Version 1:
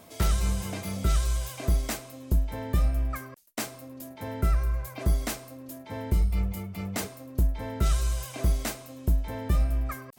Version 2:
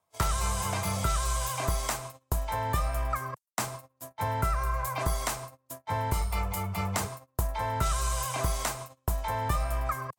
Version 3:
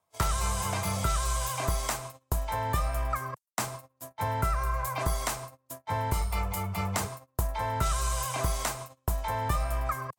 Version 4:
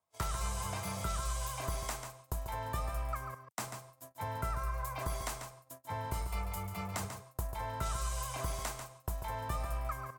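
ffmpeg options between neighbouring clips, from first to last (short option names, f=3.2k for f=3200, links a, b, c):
-filter_complex "[0:a]equalizer=f=125:t=o:w=1:g=5,equalizer=f=250:t=o:w=1:g=-11,equalizer=f=1k:t=o:w=1:g=12,equalizer=f=8k:t=o:w=1:g=5,agate=range=-36dB:threshold=-39dB:ratio=16:detection=peak,acrossover=split=290|670[a][b][c];[a]acompressor=threshold=-36dB:ratio=4[d];[b]acompressor=threshold=-49dB:ratio=4[e];[c]acompressor=threshold=-37dB:ratio=4[f];[d][e][f]amix=inputs=3:normalize=0,volume=6dB"
-af anull
-af "aecho=1:1:142:0.376,volume=-8.5dB"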